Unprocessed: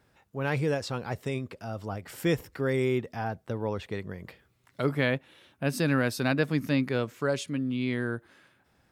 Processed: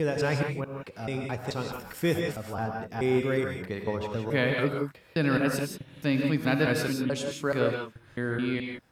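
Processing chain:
slices reordered back to front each 215 ms, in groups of 4
reverb whose tail is shaped and stops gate 200 ms rising, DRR 2 dB

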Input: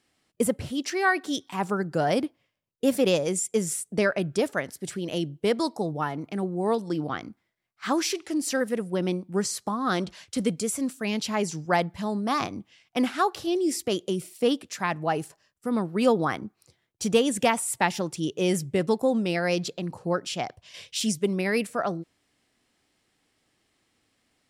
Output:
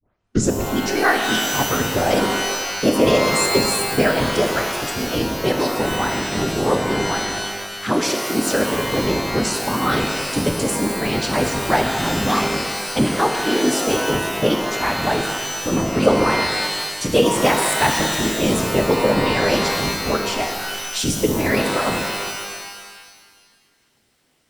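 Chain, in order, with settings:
turntable start at the beginning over 0.59 s
random phases in short frames
reverb with rising layers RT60 1.6 s, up +12 semitones, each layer −2 dB, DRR 3.5 dB
level +4 dB

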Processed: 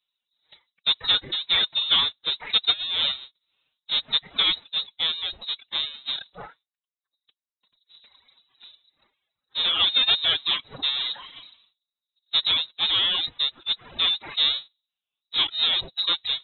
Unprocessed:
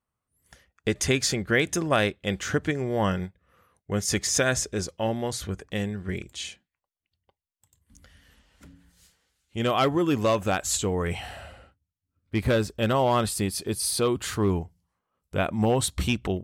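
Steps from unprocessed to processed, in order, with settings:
each half-wave held at its own peak
reverb reduction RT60 1.1 s
hollow resonant body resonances 310/650/2,800 Hz, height 8 dB, ringing for 35 ms
phase-vocoder pitch shift with formants kept +6.5 semitones
voice inversion scrambler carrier 3,900 Hz
level −4.5 dB

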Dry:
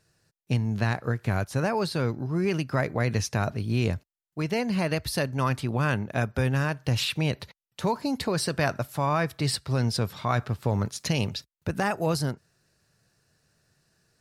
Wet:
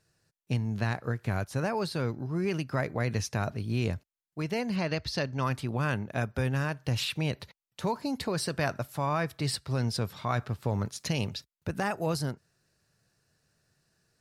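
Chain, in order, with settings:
0:04.76–0:05.43: high shelf with overshoot 7,700 Hz −13.5 dB, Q 1.5
level −4 dB

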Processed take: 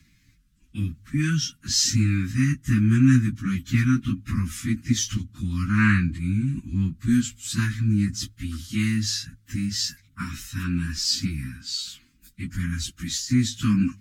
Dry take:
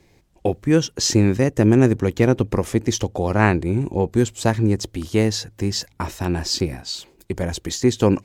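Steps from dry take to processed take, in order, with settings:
elliptic band-stop filter 260–1,300 Hz, stop band 40 dB
time stretch by phase vocoder 1.7×
level +1.5 dB

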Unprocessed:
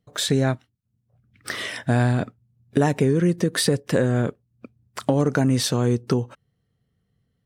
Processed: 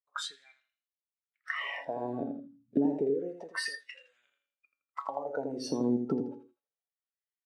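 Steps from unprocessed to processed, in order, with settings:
high-frequency loss of the air 79 metres
tuned comb filter 140 Hz, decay 0.42 s, harmonics all, mix 70%
downward compressor 5 to 1, threshold −32 dBFS, peak gain reduction 12 dB
on a send: repeating echo 82 ms, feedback 35%, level −6 dB
on the sum: auto-filter high-pass sine 0.29 Hz 240–2,700 Hz
noise reduction from a noise print of the clip's start 20 dB
level +2 dB

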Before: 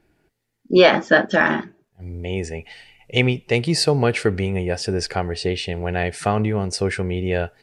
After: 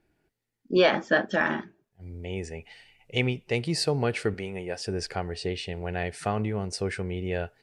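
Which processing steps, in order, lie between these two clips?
0:04.34–0:04.87: high-pass filter 280 Hz 6 dB per octave
level −8 dB

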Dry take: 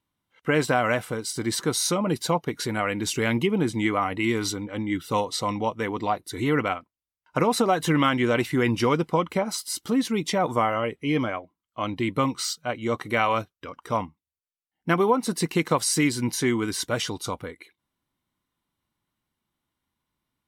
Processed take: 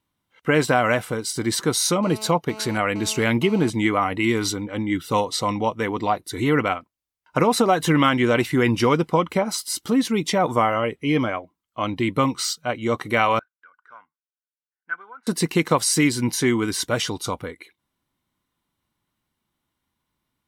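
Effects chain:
0:02.03–0:03.70: phone interference −42 dBFS
0:13.39–0:15.27: resonant band-pass 1,500 Hz, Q 16
level +3.5 dB

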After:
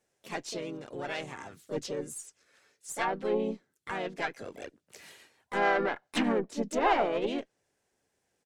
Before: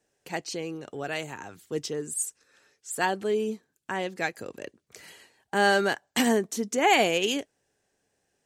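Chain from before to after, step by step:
treble cut that deepens with the level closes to 1,500 Hz, closed at −21 dBFS
tube saturation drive 16 dB, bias 0.75
pitch-shifted copies added −3 semitones −8 dB, +4 semitones −5 dB

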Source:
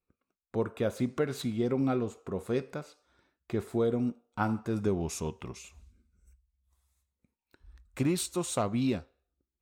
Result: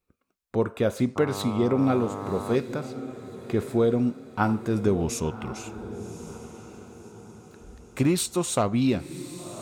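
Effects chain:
feedback delay with all-pass diffusion 1,110 ms, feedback 42%, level −13 dB
0:01.15–0:02.55: hum with harmonics 100 Hz, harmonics 13, −41 dBFS −1 dB per octave
level +6 dB

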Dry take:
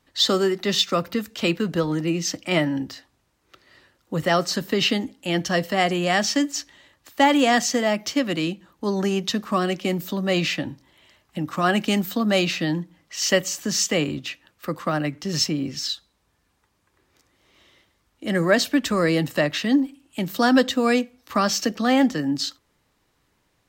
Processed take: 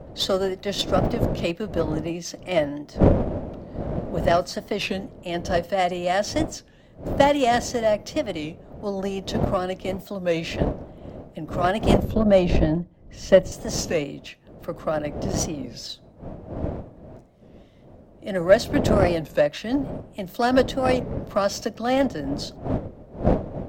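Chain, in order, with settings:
wind on the microphone 240 Hz −25 dBFS
0:12.04–0:13.52: spectral tilt −3 dB per octave
harmonic generator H 4 −25 dB, 7 −25 dB, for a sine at −1 dBFS
parametric band 610 Hz +11.5 dB 0.65 octaves
wow of a warped record 33 1/3 rpm, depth 160 cents
level −4 dB

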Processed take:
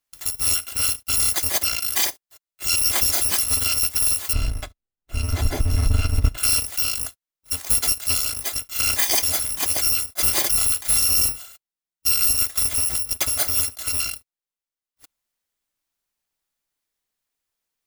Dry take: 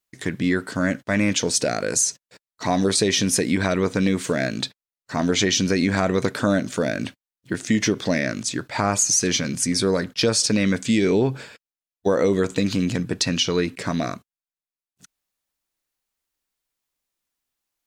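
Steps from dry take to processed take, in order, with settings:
samples in bit-reversed order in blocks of 256 samples
0:04.33–0:06.38: spectral tilt −4.5 dB per octave

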